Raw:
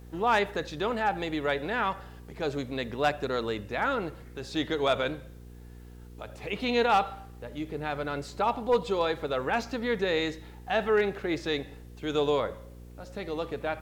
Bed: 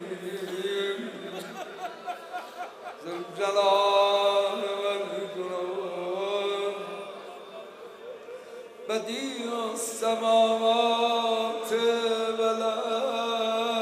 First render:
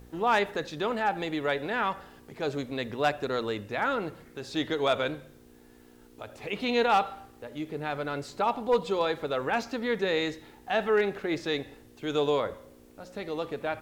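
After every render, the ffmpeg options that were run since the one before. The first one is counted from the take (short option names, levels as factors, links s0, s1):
-af "bandreject=f=60:t=h:w=4,bandreject=f=120:t=h:w=4,bandreject=f=180:t=h:w=4"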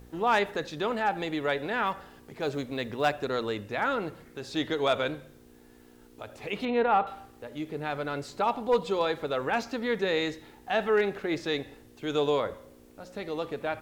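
-filter_complex "[0:a]asettb=1/sr,asplit=3[s0][s1][s2];[s0]atrim=end=1.864[s3];[s1]atrim=start=1.86:end=3.23,asetpts=PTS-STARTPTS,afade=t=in:d=0.004:c=qsin,afade=t=out:st=1.366:d=0.004:c=qsin,acrusher=bits=9:mode=log:mix=0:aa=0.000001[s4];[s2]atrim=start=3.226[s5];[s3][s4]acrossfade=d=0.004:c1=hsin:c2=qsin[s6];[s6][s5]acrossfade=d=0.004:c1=qsin:c2=hsin,asettb=1/sr,asplit=3[s7][s8][s9];[s7]atrim=end=6.654[s10];[s8]atrim=start=6.65:end=7.07,asetpts=PTS-STARTPTS,afade=t=in:d=0.004:c=qsin,afade=t=out:st=0.416:d=0.004:c=qsin,lowpass=1800[s11];[s9]atrim=start=7.066[s12];[s10][s11]acrossfade=d=0.004:c1=hsin:c2=qsin[s13];[s13][s12]acrossfade=d=0.004:c1=qsin:c2=hsin"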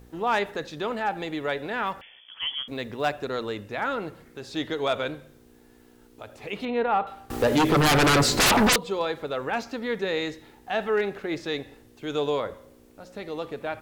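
-filter_complex "[0:a]asettb=1/sr,asplit=3[s0][s1][s2];[s0]atrim=end=2.014[s3];[s1]atrim=start=2.01:end=2.68,asetpts=PTS-STARTPTS,afade=t=in:d=0.004:c=qsin,afade=t=out:st=0.666:d=0.004:c=qsin,lowpass=f=3000:t=q:w=0.5098,lowpass=f=3000:t=q:w=0.6013,lowpass=f=3000:t=q:w=0.9,lowpass=f=3000:t=q:w=2.563,afreqshift=-3500[s4];[s2]atrim=start=2.676[s5];[s3][s4]acrossfade=d=0.004:c1=hsin:c2=qsin[s6];[s6][s5]acrossfade=d=0.004:c1=qsin:c2=hsin,asettb=1/sr,asplit=3[s7][s8][s9];[s7]atrim=end=7.304[s10];[s8]atrim=start=7.3:end=8.76,asetpts=PTS-STARTPTS,afade=t=in:d=0.004:c=qsin,afade=t=out:st=1.456:d=0.004:c=qsin,aeval=exprs='0.168*sin(PI/2*8.91*val(0)/0.168)':c=same[s11];[s9]atrim=start=8.756[s12];[s10][s11]acrossfade=d=0.004:c1=hsin:c2=qsin[s13];[s13][s12]acrossfade=d=0.004:c1=qsin:c2=hsin"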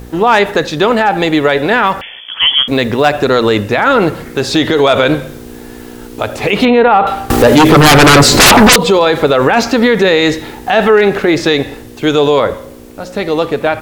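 -af "dynaudnorm=f=620:g=11:m=1.78,alimiter=level_in=10:limit=0.891:release=50:level=0:latency=1"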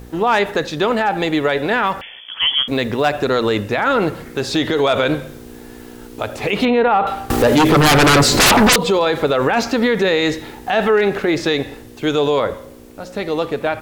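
-af "volume=0.473"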